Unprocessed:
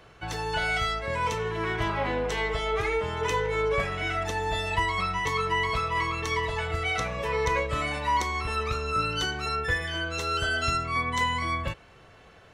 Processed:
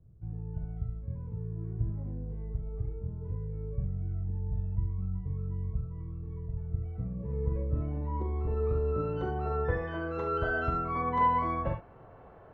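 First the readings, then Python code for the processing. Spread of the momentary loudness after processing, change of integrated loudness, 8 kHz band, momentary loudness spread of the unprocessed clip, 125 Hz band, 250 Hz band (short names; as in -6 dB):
10 LU, -6.0 dB, under -35 dB, 3 LU, +1.5 dB, -1.0 dB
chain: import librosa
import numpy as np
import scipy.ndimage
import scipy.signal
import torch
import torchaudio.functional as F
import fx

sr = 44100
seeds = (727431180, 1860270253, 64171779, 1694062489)

p1 = fx.filter_sweep_lowpass(x, sr, from_hz=130.0, to_hz=890.0, start_s=6.58, end_s=9.95, q=1.2)
y = p1 + fx.room_early_taps(p1, sr, ms=(43, 69), db=(-7.5, -10.0), dry=0)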